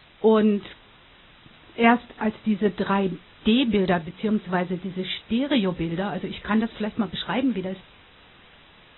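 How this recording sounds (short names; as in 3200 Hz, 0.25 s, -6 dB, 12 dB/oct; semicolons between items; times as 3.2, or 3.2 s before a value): tremolo saw down 4.9 Hz, depth 35%; a quantiser's noise floor 8-bit, dither triangular; AAC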